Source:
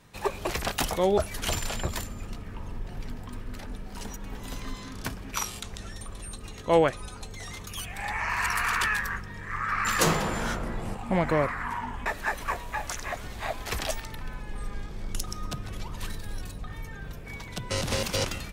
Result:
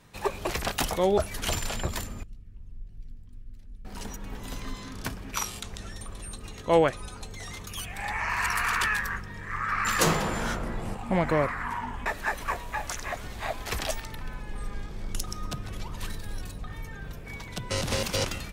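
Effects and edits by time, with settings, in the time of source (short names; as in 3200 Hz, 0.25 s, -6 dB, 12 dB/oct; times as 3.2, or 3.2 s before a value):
2.23–3.85 passive tone stack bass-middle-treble 10-0-1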